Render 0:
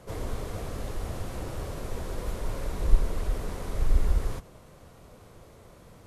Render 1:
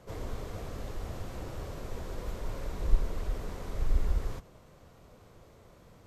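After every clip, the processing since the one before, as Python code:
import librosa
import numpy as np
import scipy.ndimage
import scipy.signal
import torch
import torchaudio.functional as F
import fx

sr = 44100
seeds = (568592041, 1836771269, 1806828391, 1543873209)

y = fx.peak_eq(x, sr, hz=10000.0, db=-10.0, octaves=0.31)
y = y * 10.0 ** (-4.5 / 20.0)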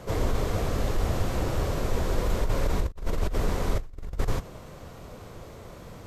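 y = fx.over_compress(x, sr, threshold_db=-33.0, ratio=-0.5)
y = y * 10.0 ** (9.0 / 20.0)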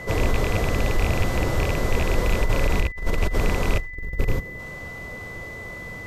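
y = fx.rattle_buzz(x, sr, strikes_db=-24.0, level_db=-21.0)
y = fx.spec_box(y, sr, start_s=3.95, length_s=0.64, low_hz=570.0, high_hz=12000.0, gain_db=-7)
y = y + 10.0 ** (-40.0 / 20.0) * np.sin(2.0 * np.pi * 2000.0 * np.arange(len(y)) / sr)
y = y * 10.0 ** (4.5 / 20.0)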